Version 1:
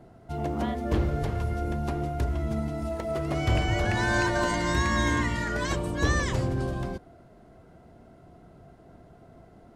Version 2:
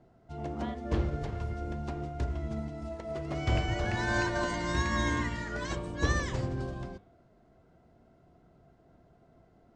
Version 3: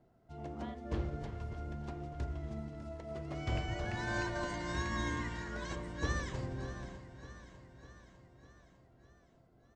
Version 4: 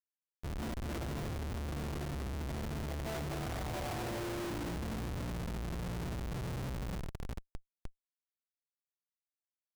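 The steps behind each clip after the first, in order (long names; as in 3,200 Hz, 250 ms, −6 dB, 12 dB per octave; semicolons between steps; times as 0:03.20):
low-pass filter 7,700 Hz 24 dB per octave; hum removal 101 Hz, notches 38; expander for the loud parts 1.5 to 1, over −34 dBFS; level −2.5 dB
repeating echo 601 ms, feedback 59%, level −13.5 dB; level −7 dB
fade in at the beginning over 1.08 s; low-pass filter sweep 2,800 Hz → 180 Hz, 0:02.95–0:04.99; comparator with hysteresis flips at −44.5 dBFS; level +2 dB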